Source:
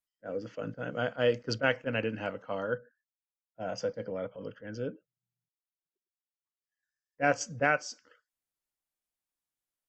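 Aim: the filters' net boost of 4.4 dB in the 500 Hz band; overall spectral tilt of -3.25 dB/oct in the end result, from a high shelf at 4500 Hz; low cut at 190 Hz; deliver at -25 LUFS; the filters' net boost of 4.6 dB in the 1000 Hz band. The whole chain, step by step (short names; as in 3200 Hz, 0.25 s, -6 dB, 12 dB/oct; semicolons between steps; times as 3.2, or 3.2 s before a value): HPF 190 Hz; bell 500 Hz +3.5 dB; bell 1000 Hz +5.5 dB; high shelf 4500 Hz +5 dB; gain +4.5 dB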